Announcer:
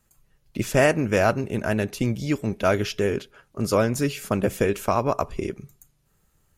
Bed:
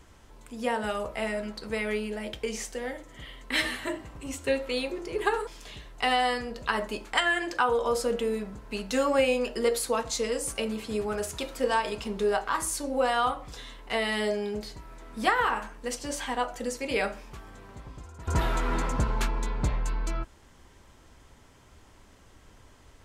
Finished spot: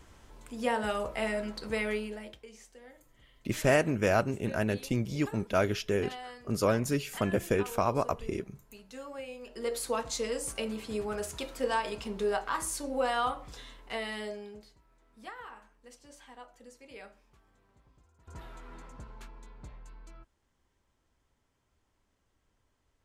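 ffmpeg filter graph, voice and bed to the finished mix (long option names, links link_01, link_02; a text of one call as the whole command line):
ffmpeg -i stem1.wav -i stem2.wav -filter_complex "[0:a]adelay=2900,volume=-6dB[link_01];[1:a]volume=13.5dB,afade=type=out:start_time=1.81:duration=0.63:silence=0.133352,afade=type=in:start_time=9.41:duration=0.5:silence=0.188365,afade=type=out:start_time=13.47:duration=1.29:silence=0.149624[link_02];[link_01][link_02]amix=inputs=2:normalize=0" out.wav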